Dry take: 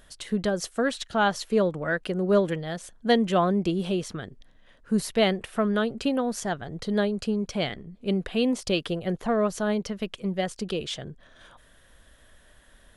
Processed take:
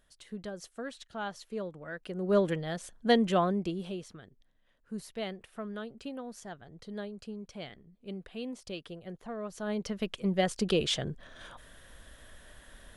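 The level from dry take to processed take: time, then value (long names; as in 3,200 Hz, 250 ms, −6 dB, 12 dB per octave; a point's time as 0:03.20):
0:01.92 −14.5 dB
0:02.42 −3 dB
0:03.29 −3 dB
0:04.21 −15 dB
0:09.43 −15 dB
0:09.88 −3.5 dB
0:10.82 +3 dB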